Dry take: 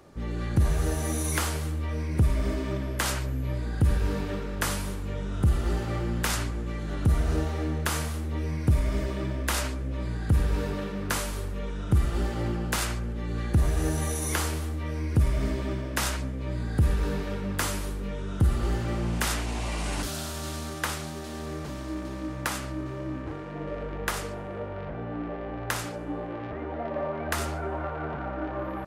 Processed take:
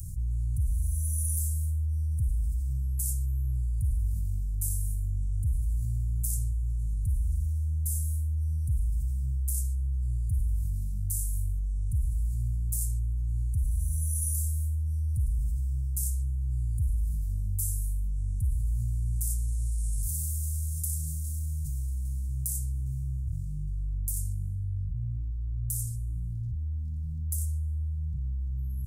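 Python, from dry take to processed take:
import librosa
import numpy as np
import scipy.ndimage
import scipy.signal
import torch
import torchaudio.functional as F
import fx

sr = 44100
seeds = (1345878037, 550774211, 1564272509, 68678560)

y = fx.notch_comb(x, sr, f0_hz=170.0, at=(24.56, 26.16))
y = scipy.signal.sosfilt(scipy.signal.cheby2(4, 70, [410.0, 2500.0], 'bandstop', fs=sr, output='sos'), y)
y = fx.env_flatten(y, sr, amount_pct=70)
y = F.gain(torch.from_numpy(y), -6.0).numpy()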